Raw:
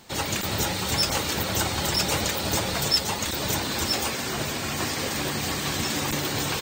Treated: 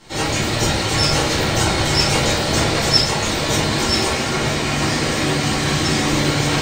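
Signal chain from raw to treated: low-pass 9.1 kHz 12 dB/octave; on a send: feedback echo behind a band-pass 617 ms, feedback 65%, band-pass 1.5 kHz, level -8.5 dB; on the sum: simulated room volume 110 m³, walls mixed, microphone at 2.2 m; trim -1 dB

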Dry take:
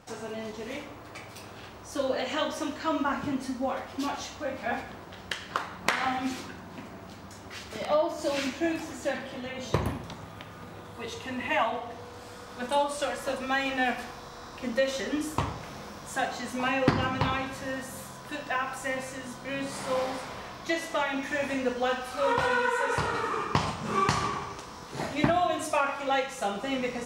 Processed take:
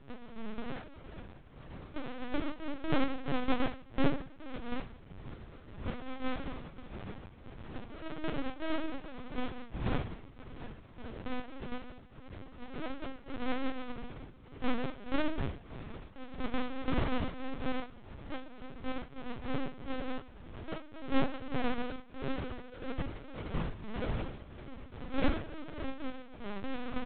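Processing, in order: self-modulated delay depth 0.46 ms; bass shelf 150 Hz +5.5 dB; in parallel at +2 dB: peak limiter -19 dBFS, peak gain reduction 10.5 dB; on the sum: cascade formant filter i; loudest bins only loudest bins 16; sample-rate reducer 1 kHz, jitter 20%; saturation -20 dBFS, distortion -17 dB; tremolo 1.7 Hz, depth 69%; doubling 22 ms -9 dB; on a send: flutter echo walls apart 5.5 m, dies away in 0.2 s; on the sum: LPC vocoder at 8 kHz pitch kept; trim +2 dB

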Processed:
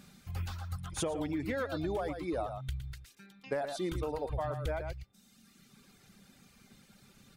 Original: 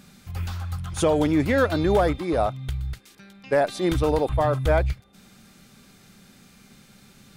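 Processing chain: reverb removal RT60 1.3 s; delay 113 ms -10.5 dB; compression 6:1, threshold -26 dBFS, peak gain reduction 10 dB; trim -5.5 dB

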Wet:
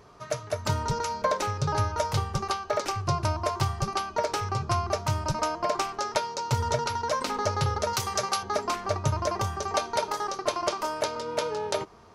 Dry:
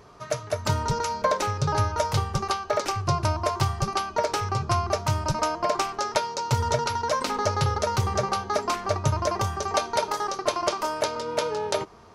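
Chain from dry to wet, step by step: 7.93–8.43 s: tilt EQ +3 dB/octave; trim -2.5 dB

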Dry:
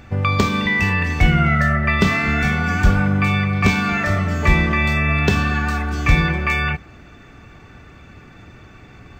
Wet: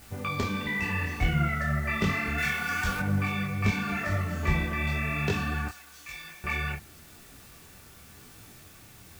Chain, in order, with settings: 5.68–6.44 s: pre-emphasis filter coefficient 0.97; added noise white -42 dBFS; 2.38–3.00 s: tilt shelf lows -7.5 dB, about 740 Hz; detune thickener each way 33 cents; trim -7.5 dB

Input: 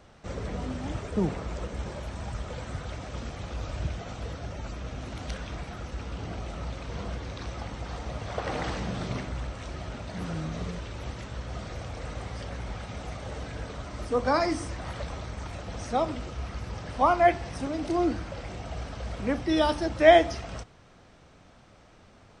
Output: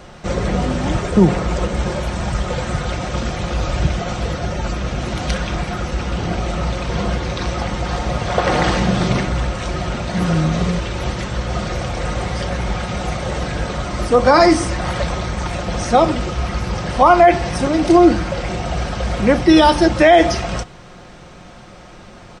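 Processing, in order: comb 5.6 ms, depth 40%; loudness maximiser +16 dB; trim -1 dB

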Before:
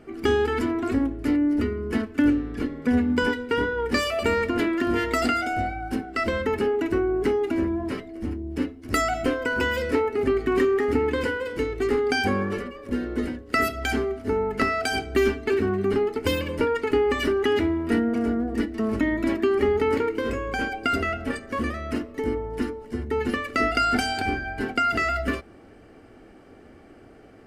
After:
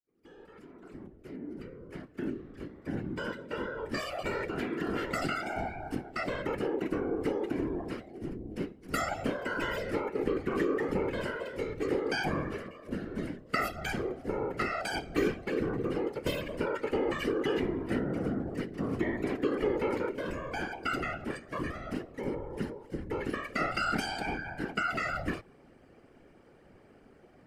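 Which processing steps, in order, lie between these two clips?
fade-in on the opening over 5.55 s; whisper effect; trim -8.5 dB

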